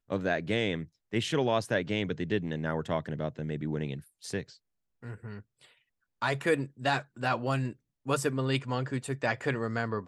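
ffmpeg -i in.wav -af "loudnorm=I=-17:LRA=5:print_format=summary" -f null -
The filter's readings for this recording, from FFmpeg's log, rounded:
Input Integrated:    -31.5 LUFS
Input True Peak:     -13.2 dBTP
Input LRA:             3.9 LU
Input Threshold:     -42.1 LUFS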